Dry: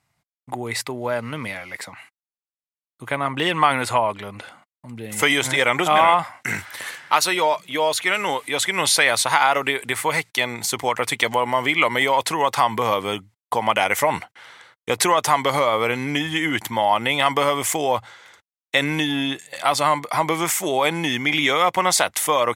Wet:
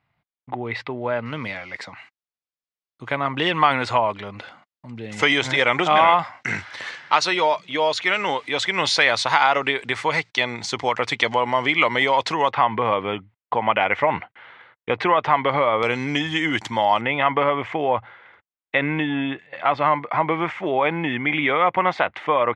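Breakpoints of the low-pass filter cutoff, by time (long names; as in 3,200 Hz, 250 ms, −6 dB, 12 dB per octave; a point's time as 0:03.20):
low-pass filter 24 dB per octave
3,400 Hz
from 0:01.26 5,600 Hz
from 0:12.51 2,900 Hz
from 0:15.83 6,500 Hz
from 0:17.01 2,600 Hz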